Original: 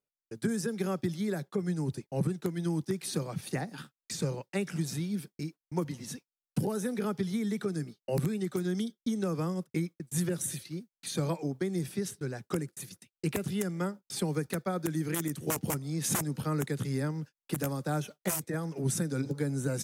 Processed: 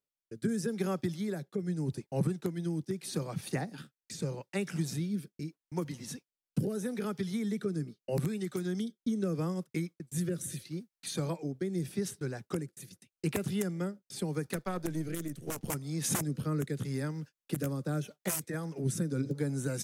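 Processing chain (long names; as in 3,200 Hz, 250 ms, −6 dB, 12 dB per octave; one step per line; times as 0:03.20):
0:14.56–0:15.70: gain on one half-wave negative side −7 dB
rotating-speaker cabinet horn 0.8 Hz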